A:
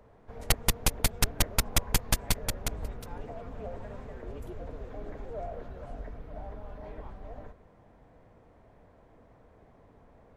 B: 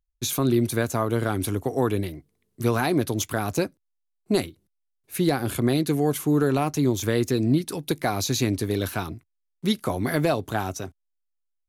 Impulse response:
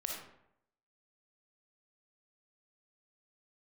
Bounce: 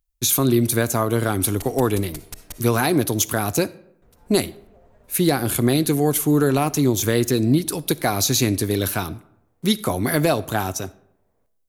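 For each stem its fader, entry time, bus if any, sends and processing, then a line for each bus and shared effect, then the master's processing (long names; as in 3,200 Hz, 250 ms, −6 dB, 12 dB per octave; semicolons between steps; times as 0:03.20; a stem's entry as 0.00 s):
−18.0 dB, 1.10 s, muted 0:02.63–0:04.02, send −4 dB, no processing
+2.5 dB, 0.00 s, send −16.5 dB, no processing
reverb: on, RT60 0.75 s, pre-delay 15 ms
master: high-shelf EQ 6,500 Hz +9.5 dB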